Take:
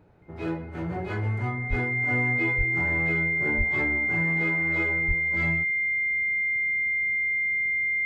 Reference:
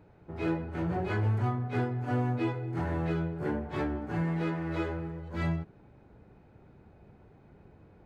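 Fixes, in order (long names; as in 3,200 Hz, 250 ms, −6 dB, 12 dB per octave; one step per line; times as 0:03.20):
notch filter 2,100 Hz, Q 30
high-pass at the plosives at 0:01.69/0:02.57/0:03.57/0:05.07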